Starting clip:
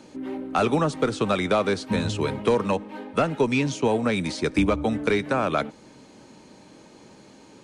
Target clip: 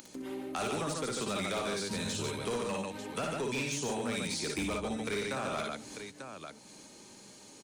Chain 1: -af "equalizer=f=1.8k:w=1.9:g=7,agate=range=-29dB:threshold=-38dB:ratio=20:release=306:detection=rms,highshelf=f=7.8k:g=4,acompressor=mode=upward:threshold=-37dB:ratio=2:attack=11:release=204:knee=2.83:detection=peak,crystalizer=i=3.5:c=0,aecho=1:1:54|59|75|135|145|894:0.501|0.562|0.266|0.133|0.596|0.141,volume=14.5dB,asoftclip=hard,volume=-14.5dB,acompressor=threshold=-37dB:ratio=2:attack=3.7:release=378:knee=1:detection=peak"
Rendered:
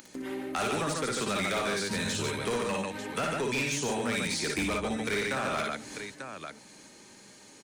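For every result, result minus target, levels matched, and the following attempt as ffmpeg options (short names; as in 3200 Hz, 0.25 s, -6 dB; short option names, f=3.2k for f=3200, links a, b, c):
compressor: peak gain reduction -3.5 dB; 2000 Hz band +2.5 dB
-af "equalizer=f=1.8k:w=1.9:g=7,agate=range=-29dB:threshold=-38dB:ratio=20:release=306:detection=rms,highshelf=f=7.8k:g=4,acompressor=mode=upward:threshold=-37dB:ratio=2:attack=11:release=204:knee=2.83:detection=peak,crystalizer=i=3.5:c=0,aecho=1:1:54|59|75|135|145|894:0.501|0.562|0.266|0.133|0.596|0.141,volume=14.5dB,asoftclip=hard,volume=-14.5dB,acompressor=threshold=-44dB:ratio=2:attack=3.7:release=378:knee=1:detection=peak"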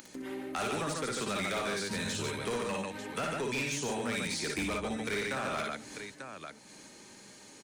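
2000 Hz band +2.5 dB
-af "agate=range=-29dB:threshold=-38dB:ratio=20:release=306:detection=rms,highshelf=f=7.8k:g=4,acompressor=mode=upward:threshold=-37dB:ratio=2:attack=11:release=204:knee=2.83:detection=peak,crystalizer=i=3.5:c=0,aecho=1:1:54|59|75|135|145|894:0.501|0.562|0.266|0.133|0.596|0.141,volume=14.5dB,asoftclip=hard,volume=-14.5dB,acompressor=threshold=-44dB:ratio=2:attack=3.7:release=378:knee=1:detection=peak"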